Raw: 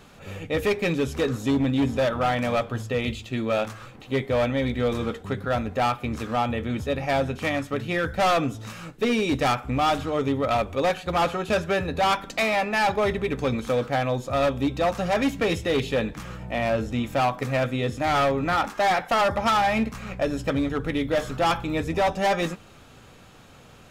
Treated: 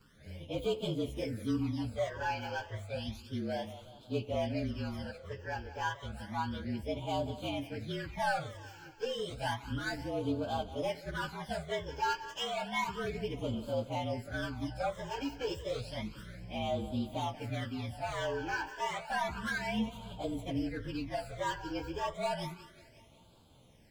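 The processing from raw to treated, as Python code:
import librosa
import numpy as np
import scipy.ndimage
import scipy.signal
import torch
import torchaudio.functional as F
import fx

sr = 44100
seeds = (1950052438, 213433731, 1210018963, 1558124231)

y = fx.partial_stretch(x, sr, pct=112)
y = fx.echo_thinned(y, sr, ms=183, feedback_pct=61, hz=420.0, wet_db=-13.5)
y = fx.phaser_stages(y, sr, stages=12, low_hz=200.0, high_hz=1900.0, hz=0.31, feedback_pct=5)
y = y * 10.0 ** (-7.5 / 20.0)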